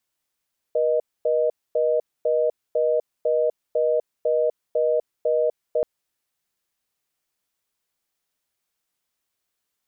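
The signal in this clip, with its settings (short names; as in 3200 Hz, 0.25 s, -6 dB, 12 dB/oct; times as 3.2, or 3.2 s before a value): call progress tone reorder tone, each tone -20.5 dBFS 5.08 s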